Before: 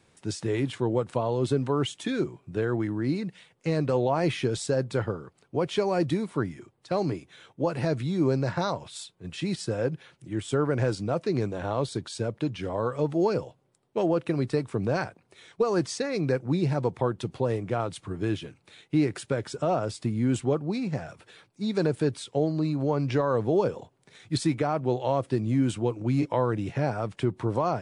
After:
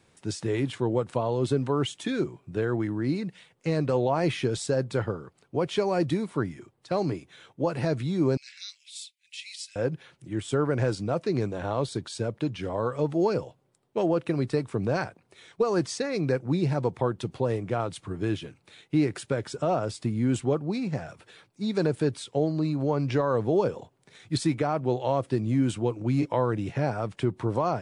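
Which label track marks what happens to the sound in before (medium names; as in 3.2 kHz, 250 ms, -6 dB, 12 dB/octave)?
8.370000	9.760000	elliptic high-pass 2.2 kHz, stop band 60 dB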